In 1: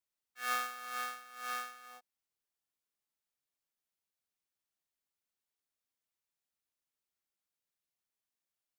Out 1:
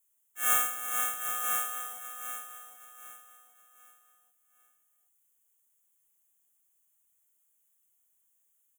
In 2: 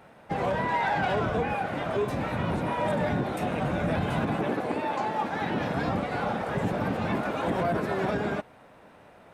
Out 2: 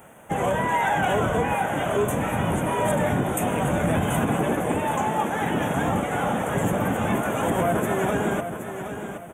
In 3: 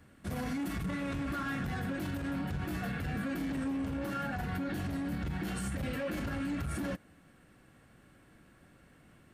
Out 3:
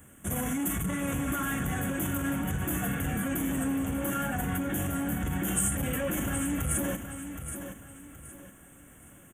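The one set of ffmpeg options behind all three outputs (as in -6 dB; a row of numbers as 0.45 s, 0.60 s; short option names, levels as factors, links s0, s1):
-af "aexciter=amount=4.4:drive=4:freq=3700,asuperstop=centerf=4600:order=8:qfactor=1.5,aecho=1:1:771|1542|2313|3084:0.355|0.117|0.0386|0.0128,volume=1.58"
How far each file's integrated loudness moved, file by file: +9.5 LU, +4.5 LU, +5.5 LU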